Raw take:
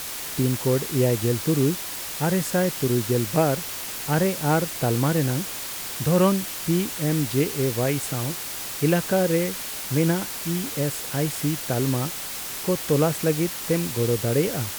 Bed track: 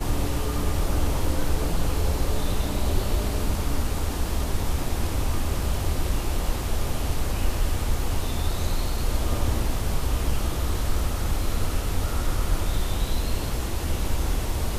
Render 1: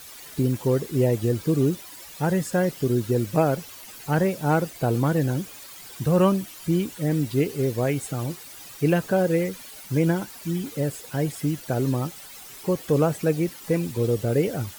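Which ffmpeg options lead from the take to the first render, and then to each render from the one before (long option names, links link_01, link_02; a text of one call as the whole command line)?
ffmpeg -i in.wav -af "afftdn=noise_reduction=13:noise_floor=-33" out.wav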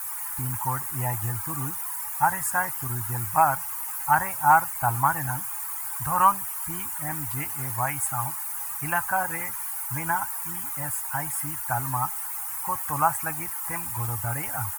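ffmpeg -i in.wav -af "firequalizer=gain_entry='entry(100,0);entry(180,-19);entry(300,-15);entry(430,-29);entry(840,13);entry(3600,-12);entry(9500,12)':delay=0.05:min_phase=1" out.wav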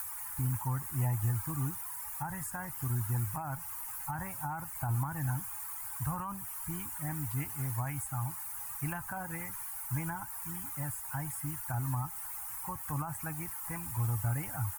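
ffmpeg -i in.wav -filter_complex "[0:a]alimiter=limit=-15.5dB:level=0:latency=1:release=11,acrossover=split=280[link_01][link_02];[link_02]acompressor=threshold=-39dB:ratio=5[link_03];[link_01][link_03]amix=inputs=2:normalize=0" out.wav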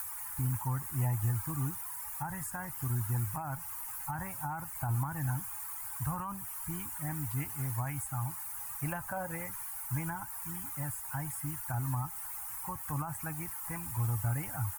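ffmpeg -i in.wav -filter_complex "[0:a]asettb=1/sr,asplit=3[link_01][link_02][link_03];[link_01]atrim=end=8.794[link_04];[link_02]atrim=start=8.79:end=9.47,asetpts=PTS-STARTPTS,afade=type=in:duration=0.004:curve=qsin,afade=type=out:start_time=0.676:duration=0.004:curve=qsin,equalizer=frequency=560:width_type=o:width=0.37:gain=11[link_05];[link_03]atrim=start=9.466[link_06];[link_04][link_05]acrossfade=duration=0.004:curve1=hsin:curve2=qsin[link_07];[link_07][link_06]acrossfade=duration=0.004:curve1=qsin:curve2=hsin" out.wav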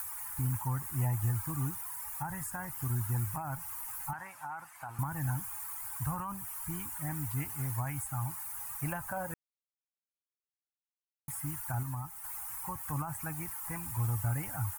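ffmpeg -i in.wav -filter_complex "[0:a]asettb=1/sr,asplit=3[link_01][link_02][link_03];[link_01]atrim=end=4.134[link_04];[link_02]atrim=start=4.13:end=4.99,asetpts=PTS-STARTPTS,afade=type=in:duration=0.004:curve=qsin,afade=type=out:start_time=0.856:duration=0.004:curve=qsin,bandpass=frequency=1900:width_type=q:width=0.53[link_05];[link_03]atrim=start=4.986[link_06];[link_04][link_05]acrossfade=duration=0.004:curve1=hsin:curve2=qsin[link_07];[link_07][link_06]acrossfade=duration=0.004:curve1=qsin:curve2=hsin,asplit=5[link_08][link_09][link_10][link_11][link_12];[link_08]atrim=end=9.34,asetpts=PTS-STARTPTS,afade=type=out:start_time=9.336:duration=0.004:curve=hsin[link_13];[link_09]atrim=start=9.34:end=11.28,asetpts=PTS-STARTPTS,volume=0[link_14];[link_10]atrim=start=11.28:end=11.832,asetpts=PTS-STARTPTS,afade=type=in:duration=0.004:curve=hsin[link_15];[link_11]atrim=start=11.828:end=12.242,asetpts=PTS-STARTPTS,volume=-4.5dB[link_16];[link_12]atrim=start=12.238[link_17];[link_13][link_14][link_15]concat=n=3:v=0:a=1[link_18];[link_18][link_16]acrossfade=duration=0.004:curve1=hsin:curve2=hsin[link_19];[link_19][link_17]acrossfade=duration=0.004:curve1=hsin:curve2=hsin" out.wav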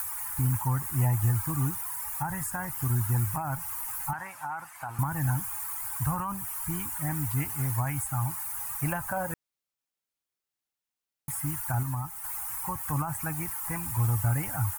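ffmpeg -i in.wav -af "volume=6dB" out.wav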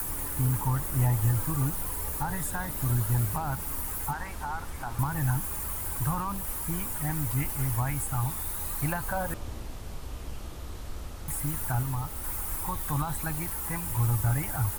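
ffmpeg -i in.wav -i bed.wav -filter_complex "[1:a]volume=-14dB[link_01];[0:a][link_01]amix=inputs=2:normalize=0" out.wav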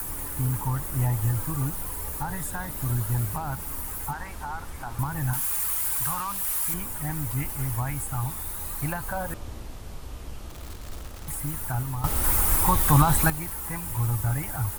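ffmpeg -i in.wav -filter_complex "[0:a]asettb=1/sr,asplit=3[link_01][link_02][link_03];[link_01]atrim=end=5.334[link_04];[link_02]atrim=start=5.33:end=6.74,asetpts=PTS-STARTPTS,afade=type=in:duration=0.004:curve=qsin,afade=type=out:start_time=1.406:duration=0.004:curve=qsin,tiltshelf=frequency=860:gain=-8.5[link_05];[link_03]atrim=start=6.736[link_06];[link_04][link_05]acrossfade=duration=0.004:curve1=hsin:curve2=qsin[link_07];[link_07][link_06]acrossfade=duration=0.004:curve1=qsin:curve2=hsin,asettb=1/sr,asplit=3[link_08][link_09][link_10];[link_08]atrim=end=10.504[link_11];[link_09]atrim=start=10.5:end=11.35,asetpts=PTS-STARTPTS,afade=type=in:duration=0.004:curve=qsin,afade=type=out:start_time=0.846:duration=0.004:curve=qsin,acrusher=bits=8:dc=4:mix=0:aa=0.000001[link_12];[link_10]atrim=start=11.346[link_13];[link_11][link_12]acrossfade=duration=0.004:curve1=hsin:curve2=qsin[link_14];[link_14][link_13]acrossfade=duration=0.004:curve1=qsin:curve2=hsin,asplit=3[link_15][link_16][link_17];[link_15]atrim=end=12.042[link_18];[link_16]atrim=start=12.038:end=13.302,asetpts=PTS-STARTPTS,volume=11.5dB[link_19];[link_17]atrim=start=13.298[link_20];[link_18][link_19]acrossfade=duration=0.004:curve1=hsin:curve2=hsin[link_21];[link_21][link_20]acrossfade=duration=0.004:curve1=hsin:curve2=hsin" out.wav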